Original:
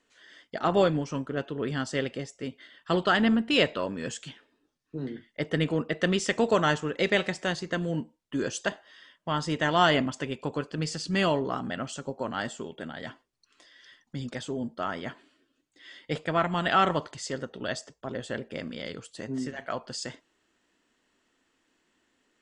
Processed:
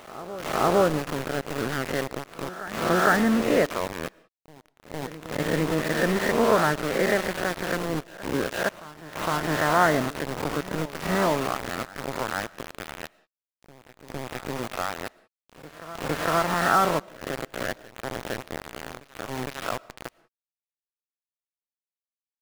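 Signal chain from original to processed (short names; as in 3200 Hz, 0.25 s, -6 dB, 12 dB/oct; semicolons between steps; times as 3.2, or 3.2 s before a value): spectral swells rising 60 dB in 0.88 s; inverse Chebyshev low-pass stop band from 3600 Hz, stop band 40 dB; in parallel at -1 dB: compressor 6:1, threshold -38 dBFS, peak gain reduction 21 dB; on the sum: sample gate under -25 dBFS; reverse echo 0.459 s -16.5 dB; on a send at -23 dB: reverb, pre-delay 70 ms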